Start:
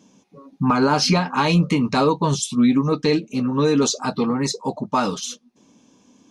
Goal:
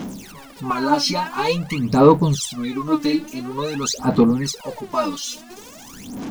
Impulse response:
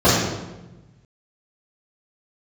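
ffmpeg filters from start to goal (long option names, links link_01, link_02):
-af "aeval=exprs='val(0)+0.5*0.0299*sgn(val(0))':channel_layout=same,aphaser=in_gain=1:out_gain=1:delay=3.5:decay=0.8:speed=0.48:type=sinusoidal,volume=-6.5dB"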